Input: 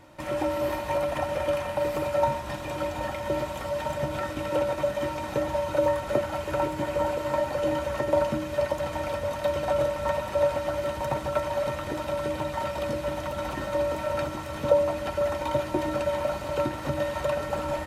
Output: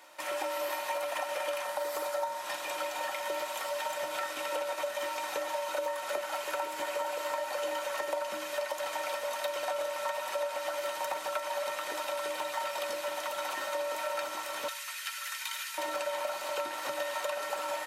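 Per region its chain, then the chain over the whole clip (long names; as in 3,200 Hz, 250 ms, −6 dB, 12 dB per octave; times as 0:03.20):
0:01.64–0:02.40: high-pass filter 96 Hz + parametric band 2,600 Hz −7.5 dB 0.54 octaves
0:14.68–0:15.78: high-pass filter 1,500 Hz 24 dB per octave + high-shelf EQ 5,800 Hz +4.5 dB
whole clip: high-pass filter 590 Hz 12 dB per octave; spectral tilt +2 dB per octave; downward compressor, threshold −30 dBFS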